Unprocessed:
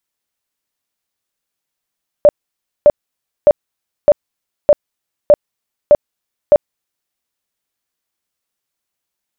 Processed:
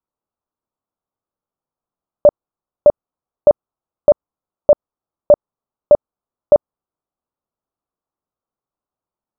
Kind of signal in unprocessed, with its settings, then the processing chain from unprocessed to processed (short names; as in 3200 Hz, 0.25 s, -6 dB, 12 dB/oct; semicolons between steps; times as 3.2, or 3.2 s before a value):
tone bursts 589 Hz, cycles 23, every 0.61 s, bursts 8, -2.5 dBFS
steep low-pass 1300 Hz 48 dB/oct